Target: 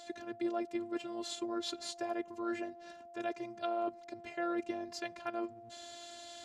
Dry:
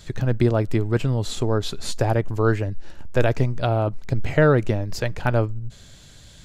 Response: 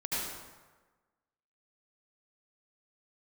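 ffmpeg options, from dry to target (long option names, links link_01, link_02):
-af "areverse,acompressor=threshold=-31dB:ratio=6,areverse,aeval=exprs='val(0)+0.00251*sin(2*PI*640*n/s)':channel_layout=same,afftfilt=real='hypot(re,im)*cos(PI*b)':imag='0':win_size=512:overlap=0.75,highpass=250,lowpass=8000,volume=3dB"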